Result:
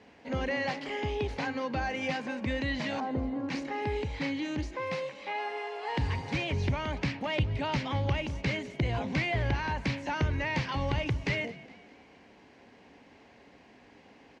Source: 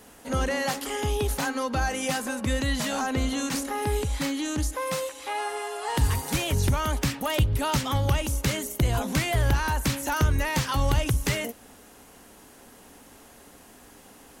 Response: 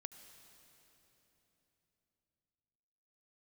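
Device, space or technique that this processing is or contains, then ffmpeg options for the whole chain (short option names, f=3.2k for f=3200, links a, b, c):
frequency-shifting delay pedal into a guitar cabinet: -filter_complex "[0:a]asettb=1/sr,asplit=3[a][b][c];[a]atrim=end=3.004[d];[b]atrim=start=3:end=3.49,asetpts=PTS-STARTPTS,afade=t=in:d=0.004:c=qsin,afade=t=out:st=0.486:d=0.004:c=qsin,lowpass=f=1.2k:w=0.5412,lowpass=f=1.2k:w=1.3066[e];[c]atrim=start=3.486[f];[d][e]acrossfade=d=0.004:c1=hsin:c2=qsin[g];[g][f]acrossfade=d=0.004:c1=qsin:c2=hsin,asplit=5[h][i][j][k][l];[i]adelay=207,afreqshift=44,volume=-19dB[m];[j]adelay=414,afreqshift=88,volume=-25.4dB[n];[k]adelay=621,afreqshift=132,volume=-31.8dB[o];[l]adelay=828,afreqshift=176,volume=-38.1dB[p];[h][m][n][o][p]amix=inputs=5:normalize=0,highpass=77,equalizer=f=1.3k:t=q:w=4:g=-8,equalizer=f=2.2k:t=q:w=4:g=6,equalizer=f=3.5k:t=q:w=4:g=-5,lowpass=f=4.4k:w=0.5412,lowpass=f=4.4k:w=1.3066,volume=-4dB"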